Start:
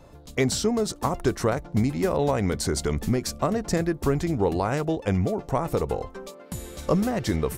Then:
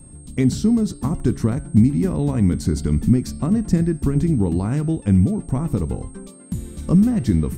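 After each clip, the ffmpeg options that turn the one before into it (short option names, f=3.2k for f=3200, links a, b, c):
-af "lowshelf=f=360:t=q:w=1.5:g=13,bandreject=f=137.3:t=h:w=4,bandreject=f=274.6:t=h:w=4,bandreject=f=411.9:t=h:w=4,bandreject=f=549.2:t=h:w=4,bandreject=f=686.5:t=h:w=4,bandreject=f=823.8:t=h:w=4,bandreject=f=961.1:t=h:w=4,bandreject=f=1.0984k:t=h:w=4,bandreject=f=1.2357k:t=h:w=4,bandreject=f=1.373k:t=h:w=4,bandreject=f=1.5103k:t=h:w=4,bandreject=f=1.6476k:t=h:w=4,bandreject=f=1.7849k:t=h:w=4,bandreject=f=1.9222k:t=h:w=4,bandreject=f=2.0595k:t=h:w=4,bandreject=f=2.1968k:t=h:w=4,bandreject=f=2.3341k:t=h:w=4,bandreject=f=2.4714k:t=h:w=4,bandreject=f=2.6087k:t=h:w=4,bandreject=f=2.746k:t=h:w=4,bandreject=f=2.8833k:t=h:w=4,bandreject=f=3.0206k:t=h:w=4,bandreject=f=3.1579k:t=h:w=4,bandreject=f=3.2952k:t=h:w=4,bandreject=f=3.4325k:t=h:w=4,bandreject=f=3.5698k:t=h:w=4,bandreject=f=3.7071k:t=h:w=4,bandreject=f=3.8444k:t=h:w=4,bandreject=f=3.9817k:t=h:w=4,bandreject=f=4.119k:t=h:w=4,bandreject=f=4.2563k:t=h:w=4,bandreject=f=4.3936k:t=h:w=4,bandreject=f=4.5309k:t=h:w=4,bandreject=f=4.6682k:t=h:w=4,bandreject=f=4.8055k:t=h:w=4,bandreject=f=4.9428k:t=h:w=4,bandreject=f=5.0801k:t=h:w=4,bandreject=f=5.2174k:t=h:w=4,bandreject=f=5.3547k:t=h:w=4,aeval=exprs='val(0)+0.00891*sin(2*PI*8500*n/s)':c=same,volume=-5.5dB"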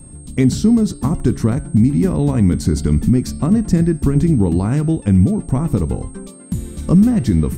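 -af "alimiter=level_in=7.5dB:limit=-1dB:release=50:level=0:latency=1,volume=-3dB"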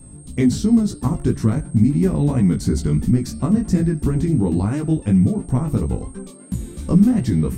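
-af "flanger=delay=15.5:depth=4.9:speed=2.9"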